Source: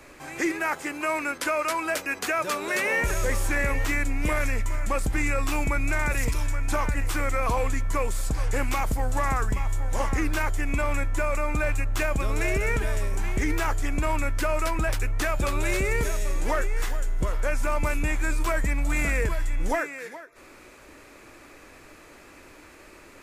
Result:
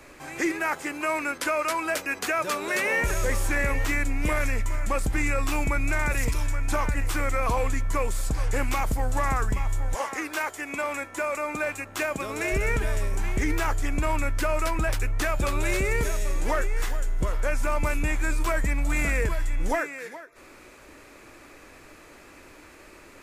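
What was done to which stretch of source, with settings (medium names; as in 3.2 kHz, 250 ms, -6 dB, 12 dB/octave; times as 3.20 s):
9.94–12.51 s: high-pass 460 Hz -> 170 Hz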